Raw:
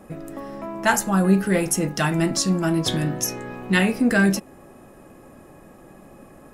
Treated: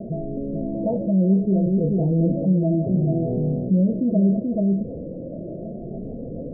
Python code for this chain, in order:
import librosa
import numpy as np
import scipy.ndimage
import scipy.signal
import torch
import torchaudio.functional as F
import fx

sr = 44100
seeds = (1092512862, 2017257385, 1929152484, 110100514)

y = fx.spec_ripple(x, sr, per_octave=1.2, drift_hz=0.71, depth_db=15)
y = scipy.signal.sosfilt(scipy.signal.cheby1(6, 6, 690.0, 'lowpass', fs=sr, output='sos'), y)
y = y + 10.0 ** (-6.5 / 20.0) * np.pad(y, (int(432 * sr / 1000.0), 0))[:len(y)]
y = fx.rotary_switch(y, sr, hz=0.8, then_hz=6.7, switch_at_s=4.44)
y = fx.env_flatten(y, sr, amount_pct=50)
y = y * 10.0 ** (-1.0 / 20.0)